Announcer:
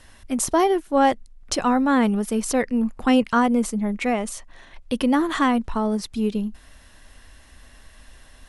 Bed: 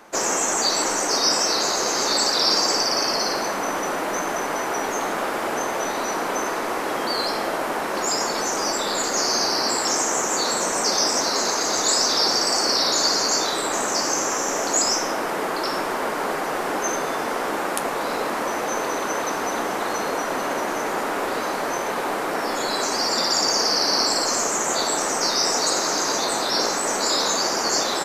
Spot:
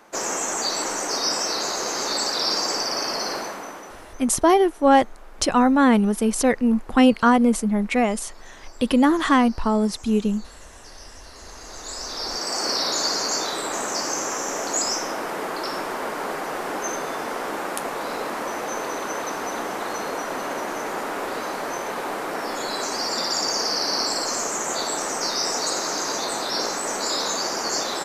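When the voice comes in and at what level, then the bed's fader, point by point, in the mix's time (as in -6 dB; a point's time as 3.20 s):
3.90 s, +2.5 dB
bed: 3.36 s -4 dB
4.34 s -25 dB
11.21 s -25 dB
12.67 s -3.5 dB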